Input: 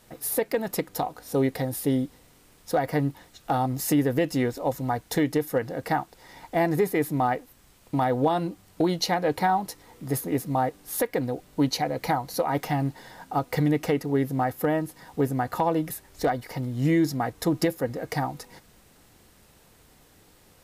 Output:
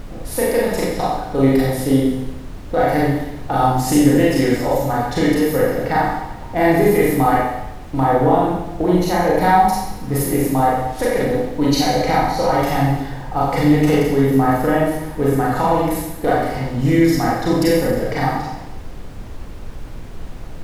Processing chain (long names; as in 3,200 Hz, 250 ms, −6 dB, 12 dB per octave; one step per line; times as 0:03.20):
low-pass that shuts in the quiet parts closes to 610 Hz, open at −24.5 dBFS
0:08.00–0:09.39: parametric band 4,600 Hz −14 dB 1.3 octaves
four-comb reverb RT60 0.94 s, combs from 30 ms, DRR −6.5 dB
background noise brown −32 dBFS
level +2.5 dB